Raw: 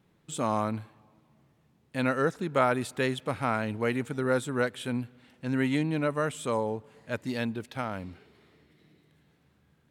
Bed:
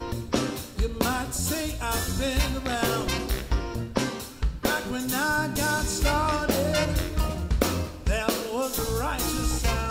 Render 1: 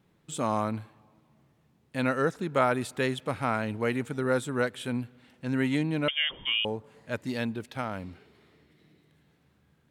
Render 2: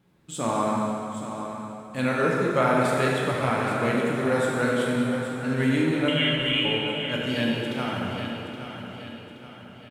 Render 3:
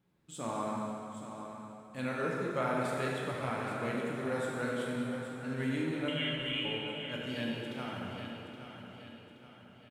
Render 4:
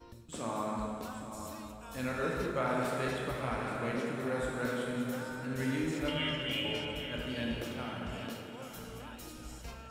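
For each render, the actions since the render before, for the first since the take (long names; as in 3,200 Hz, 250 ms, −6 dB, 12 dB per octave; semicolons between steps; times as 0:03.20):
0:06.08–0:06.65: voice inversion scrambler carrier 3,400 Hz
on a send: repeating echo 822 ms, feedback 46%, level −10 dB; on the sum: dense smooth reverb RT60 2.8 s, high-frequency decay 0.85×, DRR −3.5 dB
level −11 dB
mix in bed −21 dB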